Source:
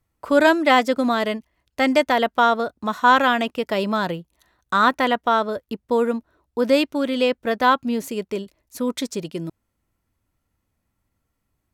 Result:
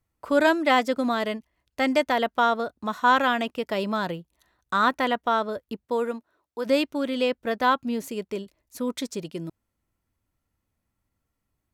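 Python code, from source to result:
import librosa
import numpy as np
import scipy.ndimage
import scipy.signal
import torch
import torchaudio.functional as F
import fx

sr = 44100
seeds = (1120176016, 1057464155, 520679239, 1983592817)

y = fx.highpass(x, sr, hz=fx.line((5.84, 260.0), (6.65, 660.0)), slope=6, at=(5.84, 6.65), fade=0.02)
y = y * librosa.db_to_amplitude(-4.5)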